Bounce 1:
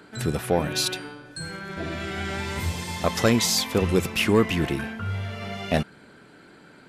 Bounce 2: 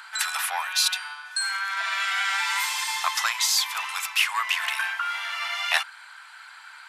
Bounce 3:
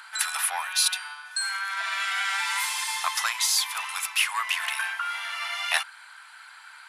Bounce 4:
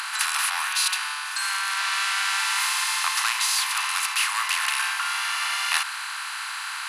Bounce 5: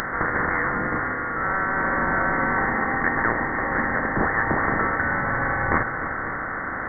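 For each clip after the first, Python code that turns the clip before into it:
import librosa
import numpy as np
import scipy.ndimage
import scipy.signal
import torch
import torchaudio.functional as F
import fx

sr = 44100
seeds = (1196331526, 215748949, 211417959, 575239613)

y1 = scipy.signal.sosfilt(scipy.signal.butter(8, 890.0, 'highpass', fs=sr, output='sos'), x)
y1 = fx.rider(y1, sr, range_db=5, speed_s=0.5)
y1 = F.gain(torch.from_numpy(y1), 5.5).numpy()
y2 = fx.peak_eq(y1, sr, hz=10000.0, db=10.5, octaves=0.2)
y2 = F.gain(torch.from_numpy(y2), -2.0).numpy()
y3 = fx.bin_compress(y2, sr, power=0.4)
y3 = fx.ladder_highpass(y3, sr, hz=790.0, resonance_pct=25)
y3 = F.gain(torch.from_numpy(y3), 1.0).numpy()
y4 = fx.dmg_noise_colour(y3, sr, seeds[0], colour='violet', level_db=-43.0)
y4 = fx.echo_multitap(y4, sr, ms=(302, 548), db=(-12.0, -14.5))
y4 = fx.freq_invert(y4, sr, carrier_hz=2900)
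y4 = F.gain(torch.from_numpy(y4), 4.0).numpy()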